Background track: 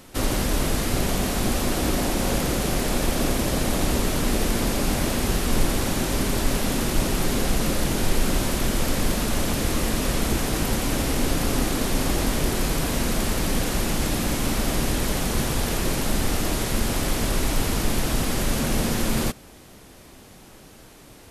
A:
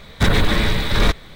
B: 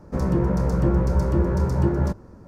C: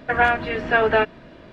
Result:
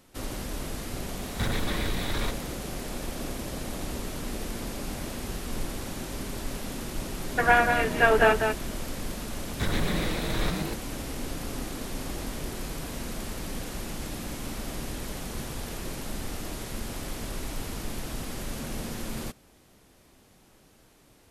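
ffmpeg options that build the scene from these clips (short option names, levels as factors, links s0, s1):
-filter_complex "[1:a]asplit=2[s0][s1];[0:a]volume=0.266[s2];[s0]acompressor=threshold=0.0708:ratio=2.5:attack=2.3:release=74:knee=1:detection=peak[s3];[3:a]aecho=1:1:192:0.501[s4];[s1]asplit=9[s5][s6][s7][s8][s9][s10][s11][s12][s13];[s6]adelay=121,afreqshift=150,volume=0.501[s14];[s7]adelay=242,afreqshift=300,volume=0.305[s15];[s8]adelay=363,afreqshift=450,volume=0.186[s16];[s9]adelay=484,afreqshift=600,volume=0.114[s17];[s10]adelay=605,afreqshift=750,volume=0.0692[s18];[s11]adelay=726,afreqshift=900,volume=0.0422[s19];[s12]adelay=847,afreqshift=1050,volume=0.0257[s20];[s13]adelay=968,afreqshift=1200,volume=0.0157[s21];[s5][s14][s15][s16][s17][s18][s19][s20][s21]amix=inputs=9:normalize=0[s22];[s3]atrim=end=1.35,asetpts=PTS-STARTPTS,volume=0.501,afade=t=in:d=0.004:c=hsin,afade=t=out:st=1.346:d=0.004:c=hsin,adelay=1190[s23];[s4]atrim=end=1.52,asetpts=PTS-STARTPTS,volume=0.75,afade=t=in:d=0.004:c=hsin,afade=t=out:st=1.516:d=0.004:c=hsin,adelay=7290[s24];[s22]atrim=end=1.35,asetpts=PTS-STARTPTS,volume=0.211,afade=t=in:d=0.004:c=hsin,afade=t=out:st=1.346:d=0.004:c=hsin,adelay=9390[s25];[s2][s23][s24][s25]amix=inputs=4:normalize=0"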